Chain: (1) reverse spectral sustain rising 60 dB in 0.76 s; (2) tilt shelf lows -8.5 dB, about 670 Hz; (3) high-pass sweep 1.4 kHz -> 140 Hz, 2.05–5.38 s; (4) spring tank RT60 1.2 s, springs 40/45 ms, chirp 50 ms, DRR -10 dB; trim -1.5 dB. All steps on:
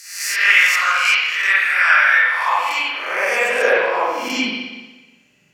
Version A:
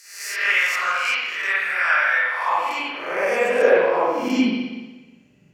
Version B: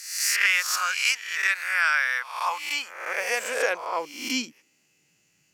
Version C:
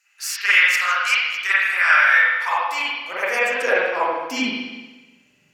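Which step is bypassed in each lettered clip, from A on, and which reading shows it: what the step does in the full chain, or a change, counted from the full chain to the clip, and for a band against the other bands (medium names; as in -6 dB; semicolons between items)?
2, 250 Hz band +12.5 dB; 4, crest factor change +4.0 dB; 1, 250 Hz band +2.0 dB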